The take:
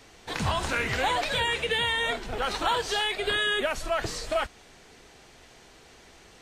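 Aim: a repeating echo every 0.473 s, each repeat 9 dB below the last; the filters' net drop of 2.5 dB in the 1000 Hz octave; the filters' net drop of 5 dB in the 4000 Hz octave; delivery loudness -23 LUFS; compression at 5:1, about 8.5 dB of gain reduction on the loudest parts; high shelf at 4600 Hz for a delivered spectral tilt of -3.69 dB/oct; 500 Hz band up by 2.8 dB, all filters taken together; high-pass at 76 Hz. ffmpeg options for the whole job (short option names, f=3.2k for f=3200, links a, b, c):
-af "highpass=76,equalizer=f=500:t=o:g=5,equalizer=f=1k:t=o:g=-4.5,equalizer=f=4k:t=o:g=-4.5,highshelf=f=4.6k:g=-4.5,acompressor=threshold=-32dB:ratio=5,aecho=1:1:473|946|1419|1892:0.355|0.124|0.0435|0.0152,volume=12dB"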